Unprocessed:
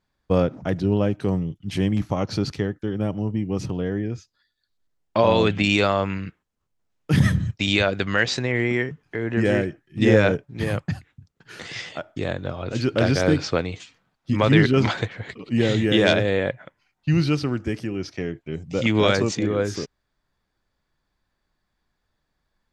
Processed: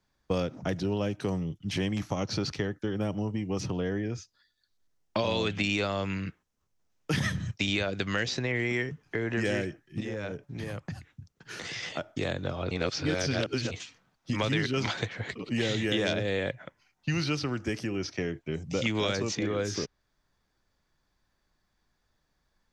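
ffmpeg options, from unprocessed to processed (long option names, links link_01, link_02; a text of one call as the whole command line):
ffmpeg -i in.wav -filter_complex "[0:a]asettb=1/sr,asplit=3[link_01][link_02][link_03];[link_01]atrim=end=10.004[link_04];[link_02]atrim=start=10:end=11.83,asetpts=PTS-STARTPTS,afade=type=in:duration=0.004:curve=qsin,afade=type=out:start_time=1.826:duration=0.004:curve=qsin,acompressor=threshold=-34dB:ratio=4:attack=3.2:release=140:knee=1:detection=peak[link_05];[link_03]atrim=start=11.826[link_06];[link_04][link_05]acrossfade=duration=0.004:curve1=hsin:curve2=qsin[link_07];[link_07][link_06]acrossfade=duration=0.004:curve1=qsin:curve2=hsin,asplit=3[link_08][link_09][link_10];[link_08]atrim=end=12.712[link_11];[link_09]atrim=start=12.708:end=13.712,asetpts=PTS-STARTPTS,areverse[link_12];[link_10]atrim=start=13.708[link_13];[link_11][link_12]acrossfade=duration=0.004:curve1=hsin:curve2=hsin[link_14];[link_14][link_13]acrossfade=duration=0.004:curve1=hsin:curve2=hsin,equalizer=frequency=5900:width_type=o:width=0.44:gain=6,acrossover=split=85|510|2300|5200[link_15][link_16][link_17][link_18][link_19];[link_15]acompressor=threshold=-47dB:ratio=4[link_20];[link_16]acompressor=threshold=-31dB:ratio=4[link_21];[link_17]acompressor=threshold=-35dB:ratio=4[link_22];[link_18]acompressor=threshold=-34dB:ratio=4[link_23];[link_19]acompressor=threshold=-48dB:ratio=4[link_24];[link_20][link_21][link_22][link_23][link_24]amix=inputs=5:normalize=0" out.wav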